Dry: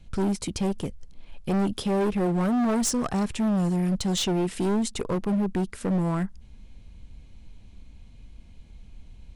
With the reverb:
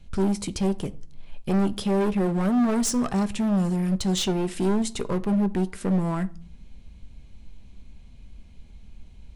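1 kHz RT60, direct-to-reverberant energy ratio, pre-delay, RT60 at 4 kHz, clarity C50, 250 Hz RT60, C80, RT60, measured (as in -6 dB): 0.45 s, 11.0 dB, 5 ms, 0.35 s, 21.0 dB, 0.75 s, 25.0 dB, 0.45 s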